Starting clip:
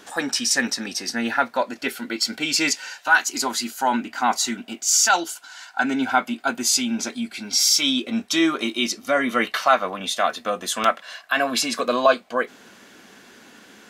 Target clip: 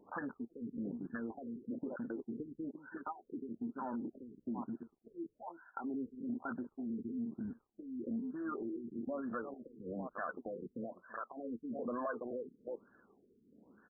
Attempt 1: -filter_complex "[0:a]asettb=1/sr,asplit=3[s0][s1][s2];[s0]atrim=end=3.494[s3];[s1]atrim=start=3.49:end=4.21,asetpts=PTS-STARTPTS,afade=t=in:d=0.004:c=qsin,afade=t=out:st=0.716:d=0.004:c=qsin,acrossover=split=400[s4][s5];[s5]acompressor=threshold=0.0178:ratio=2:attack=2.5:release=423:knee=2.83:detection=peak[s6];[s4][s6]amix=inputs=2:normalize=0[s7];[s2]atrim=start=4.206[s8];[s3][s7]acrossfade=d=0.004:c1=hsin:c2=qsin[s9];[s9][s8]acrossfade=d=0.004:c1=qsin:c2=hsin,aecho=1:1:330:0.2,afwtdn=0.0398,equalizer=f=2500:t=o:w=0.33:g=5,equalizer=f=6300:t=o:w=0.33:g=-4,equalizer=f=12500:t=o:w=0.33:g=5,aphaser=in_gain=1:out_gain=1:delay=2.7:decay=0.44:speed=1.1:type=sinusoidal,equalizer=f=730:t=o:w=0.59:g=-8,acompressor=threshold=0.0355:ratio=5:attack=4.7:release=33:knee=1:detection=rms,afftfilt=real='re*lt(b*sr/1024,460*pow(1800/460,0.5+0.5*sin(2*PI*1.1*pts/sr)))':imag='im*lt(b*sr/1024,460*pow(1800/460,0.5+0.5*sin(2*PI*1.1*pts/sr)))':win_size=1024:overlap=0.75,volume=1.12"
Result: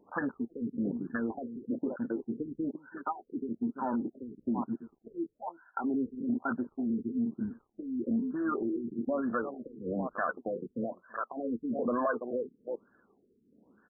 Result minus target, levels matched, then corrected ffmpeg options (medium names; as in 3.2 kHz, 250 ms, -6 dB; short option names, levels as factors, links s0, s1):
compression: peak gain reduction -9 dB
-filter_complex "[0:a]asettb=1/sr,asplit=3[s0][s1][s2];[s0]atrim=end=3.494[s3];[s1]atrim=start=3.49:end=4.21,asetpts=PTS-STARTPTS,afade=t=in:d=0.004:c=qsin,afade=t=out:st=0.716:d=0.004:c=qsin,acrossover=split=400[s4][s5];[s5]acompressor=threshold=0.0178:ratio=2:attack=2.5:release=423:knee=2.83:detection=peak[s6];[s4][s6]amix=inputs=2:normalize=0[s7];[s2]atrim=start=4.206[s8];[s3][s7]acrossfade=d=0.004:c1=hsin:c2=qsin[s9];[s9][s8]acrossfade=d=0.004:c1=qsin:c2=hsin,aecho=1:1:330:0.2,afwtdn=0.0398,equalizer=f=2500:t=o:w=0.33:g=5,equalizer=f=6300:t=o:w=0.33:g=-4,equalizer=f=12500:t=o:w=0.33:g=5,aphaser=in_gain=1:out_gain=1:delay=2.7:decay=0.44:speed=1.1:type=sinusoidal,equalizer=f=730:t=o:w=0.59:g=-8,acompressor=threshold=0.01:ratio=5:attack=4.7:release=33:knee=1:detection=rms,afftfilt=real='re*lt(b*sr/1024,460*pow(1800/460,0.5+0.5*sin(2*PI*1.1*pts/sr)))':imag='im*lt(b*sr/1024,460*pow(1800/460,0.5+0.5*sin(2*PI*1.1*pts/sr)))':win_size=1024:overlap=0.75,volume=1.12"